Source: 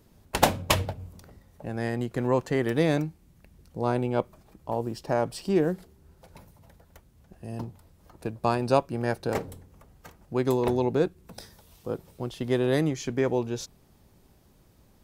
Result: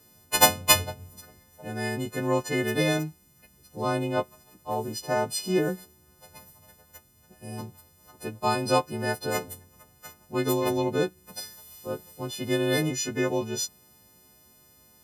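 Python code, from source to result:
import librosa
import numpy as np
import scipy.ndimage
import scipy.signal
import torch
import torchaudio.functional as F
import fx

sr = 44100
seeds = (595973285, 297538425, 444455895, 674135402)

y = fx.freq_snap(x, sr, grid_st=3)
y = scipy.signal.sosfilt(scipy.signal.butter(2, 75.0, 'highpass', fs=sr, output='sos'), y)
y = y * 10.0 ** (-1.0 / 20.0)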